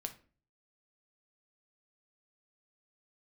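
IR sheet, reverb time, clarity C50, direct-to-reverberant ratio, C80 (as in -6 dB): 0.40 s, 13.5 dB, 5.5 dB, 19.5 dB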